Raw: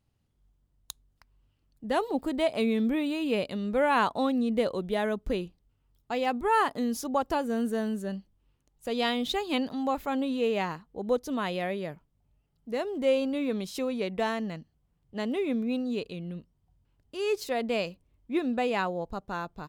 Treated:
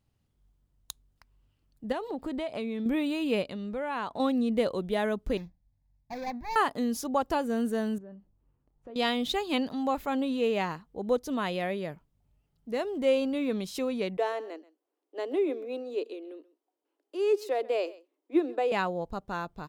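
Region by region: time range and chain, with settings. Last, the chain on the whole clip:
1.92–2.86 high shelf 7800 Hz -10 dB + compressor 5:1, threshold -30 dBFS
3.42–4.2 high shelf 10000 Hz -10.5 dB + compressor 2:1, threshold -36 dBFS
5.37–6.56 median filter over 41 samples + fixed phaser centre 2000 Hz, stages 8
7.98–8.96 LPF 1200 Hz + compressor 3:1, threshold -46 dBFS + doubler 29 ms -11.5 dB
14.17–18.72 steep high-pass 300 Hz 72 dB/oct + tilt shelf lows +7 dB, about 690 Hz + echo 0.132 s -20 dB
whole clip: dry

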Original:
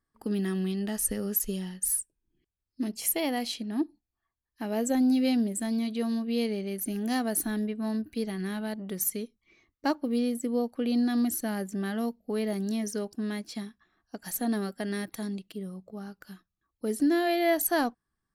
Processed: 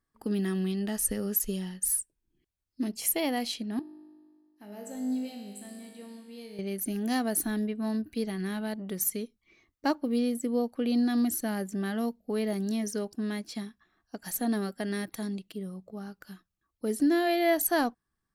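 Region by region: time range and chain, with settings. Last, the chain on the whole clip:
3.79–6.59 high shelf 8700 Hz +6 dB + resonator 51 Hz, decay 1.9 s, mix 90%
whole clip: dry

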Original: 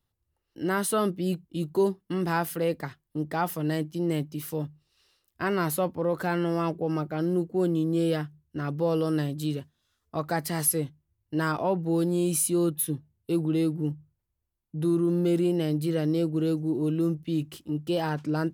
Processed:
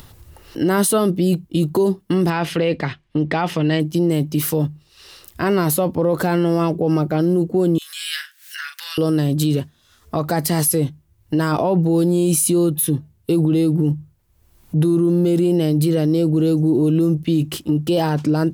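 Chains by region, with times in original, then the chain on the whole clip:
2.3–3.8 LPF 4400 Hz + bell 2500 Hz +9.5 dB 1.3 oct
7.78–8.98 elliptic high-pass 1600 Hz, stop band 80 dB + upward compressor, threshold -43 dBFS + doubler 41 ms -7.5 dB
whole clip: dynamic EQ 1600 Hz, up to -6 dB, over -44 dBFS, Q 0.89; upward compressor, threshold -43 dBFS; maximiser +24.5 dB; gain -8.5 dB

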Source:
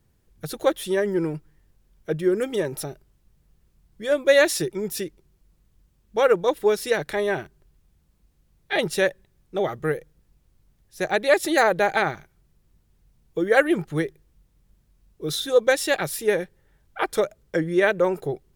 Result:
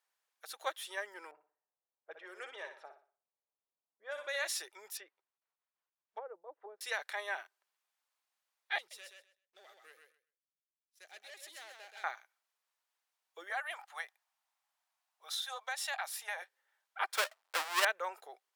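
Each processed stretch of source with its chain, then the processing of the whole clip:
1.31–4.47 low-pass opened by the level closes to 480 Hz, open at -16 dBFS + flutter echo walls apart 10.4 m, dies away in 0.4 s + compressor 3:1, threshold -20 dBFS
4.97–6.81 treble ducked by the level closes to 380 Hz, closed at -18 dBFS + expander -57 dBFS + LPF 1500 Hz 6 dB/oct
8.78–12.04 sample leveller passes 3 + passive tone stack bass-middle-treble 10-0-1 + feedback echo 0.128 s, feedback 17%, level -5 dB
13.5–16.42 resonant low shelf 530 Hz -11 dB, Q 3 + compressor, threshold -23 dBFS
17.13–17.85 half-waves squared off + notch 6400 Hz, Q 24
whole clip: HPF 780 Hz 24 dB/oct; high shelf 8200 Hz -5.5 dB; gain -8 dB

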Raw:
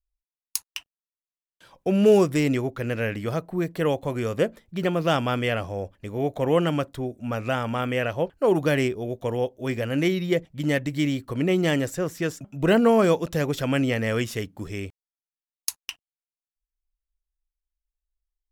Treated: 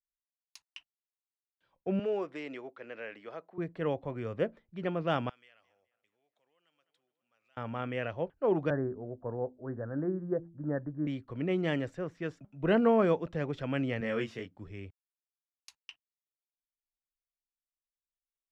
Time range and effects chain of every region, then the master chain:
1.99–3.58 BPF 410–7700 Hz + compressor 1.5:1, threshold -26 dBFS
5.29–7.57 darkening echo 0.208 s, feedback 71%, low-pass 2900 Hz, level -18.5 dB + compressor 4:1, threshold -30 dBFS + differentiator
8.7–11.07 steep low-pass 1700 Hz 96 dB/oct + de-hum 84.26 Hz, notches 4
14–14.55 HPF 130 Hz + doubler 22 ms -3.5 dB
whole clip: LPF 2700 Hz 12 dB/oct; three-band expander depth 40%; gain -9 dB

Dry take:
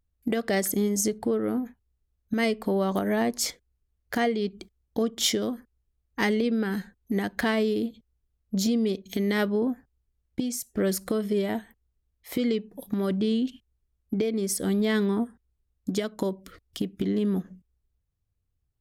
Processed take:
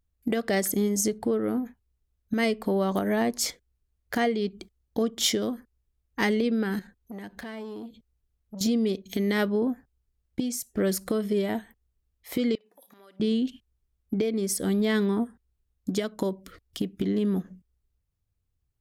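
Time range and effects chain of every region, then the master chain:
6.79–8.61 compressor 2.5:1, threshold -39 dBFS + core saturation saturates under 1400 Hz
12.55–13.2 HPF 710 Hz + compressor, threshold -51 dBFS + flutter echo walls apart 9.6 m, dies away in 0.21 s
whole clip: dry

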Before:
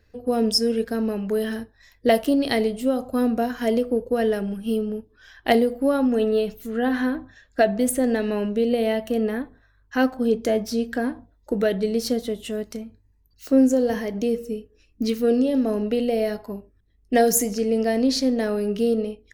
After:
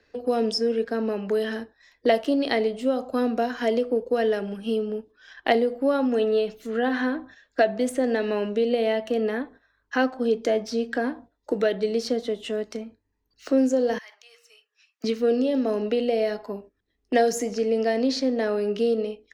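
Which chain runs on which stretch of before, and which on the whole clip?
13.98–15.04 HPF 1100 Hz 24 dB/oct + compressor 8:1, threshold -43 dBFS
whole clip: three-band isolator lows -15 dB, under 240 Hz, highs -19 dB, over 7100 Hz; gate -47 dBFS, range -8 dB; three-band squash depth 40%

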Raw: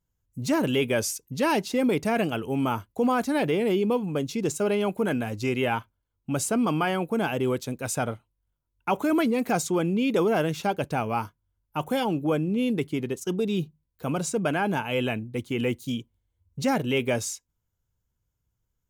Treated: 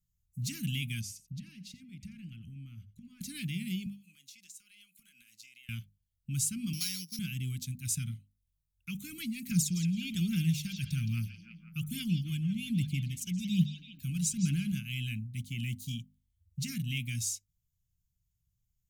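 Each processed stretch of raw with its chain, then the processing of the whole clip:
1.01–3.21 LPF 1700 Hz 6 dB/oct + compressor 12:1, threshold -33 dBFS + echo 87 ms -16 dB
3.86–5.69 Chebyshev high-pass 960 Hz + compressor 10:1, threshold -44 dBFS
6.73–7.19 sample sorter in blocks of 8 samples + HPF 360 Hz + notch 730 Hz
9.51–14.72 phaser 1.2 Hz, delay 1.4 ms, feedback 53% + delay with a stepping band-pass 0.167 s, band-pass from 4200 Hz, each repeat -0.7 oct, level -5 dB
whole clip: elliptic band-stop 180–2200 Hz, stop band 60 dB; bell 1800 Hz -10.5 dB 1.5 oct; notches 50/100/150/200/250 Hz

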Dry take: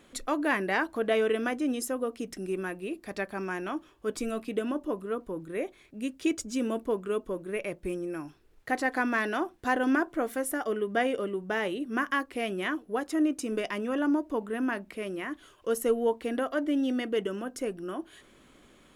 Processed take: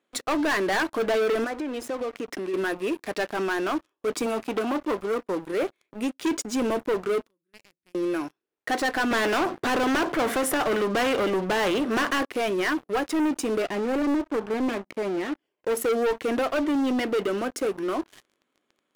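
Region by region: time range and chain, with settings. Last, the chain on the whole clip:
1.44–2.54 overdrive pedal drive 14 dB, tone 1300 Hz, clips at -18.5 dBFS + compressor 12:1, threshold -36 dBFS
4.26–5.54 HPF 130 Hz + core saturation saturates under 1200 Hz
7.28–7.95 passive tone stack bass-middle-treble 6-0-2 + upward compressor, threshold -59 dBFS
9.11–12.25 tilt -3.5 dB/oct + spectral compressor 2:1
13.62–15.77 minimum comb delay 0.38 ms + high shelf 2300 Hz -11.5 dB + Doppler distortion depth 0.22 ms
whole clip: HPF 280 Hz 12 dB/oct; high shelf 4700 Hz -6.5 dB; sample leveller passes 5; gain -7 dB

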